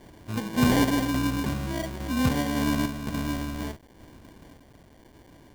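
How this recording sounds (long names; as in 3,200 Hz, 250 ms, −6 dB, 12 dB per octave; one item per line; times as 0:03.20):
aliases and images of a low sample rate 1,300 Hz, jitter 0%
sample-and-hold tremolo
a quantiser's noise floor 10 bits, dither none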